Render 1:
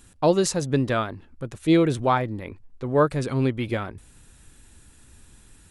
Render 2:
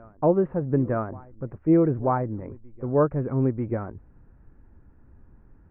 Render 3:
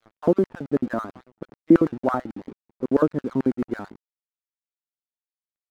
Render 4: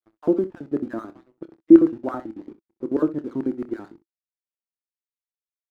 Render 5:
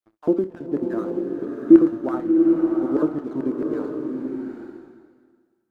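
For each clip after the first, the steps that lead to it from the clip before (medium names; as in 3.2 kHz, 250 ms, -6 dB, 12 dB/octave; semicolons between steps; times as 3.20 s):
Gaussian low-pass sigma 6.7 samples; reverse echo 940 ms -23 dB
LFO high-pass square 9.1 Hz 250–1500 Hz; crossover distortion -46 dBFS; phaser 0.69 Hz, delay 1.6 ms, feedback 30%
gate with hold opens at -47 dBFS; peaking EQ 330 Hz +12 dB 0.38 oct; on a send: early reflections 27 ms -12.5 dB, 64 ms -16 dB; on the sum: trim -7.5 dB
swelling reverb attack 850 ms, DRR 2 dB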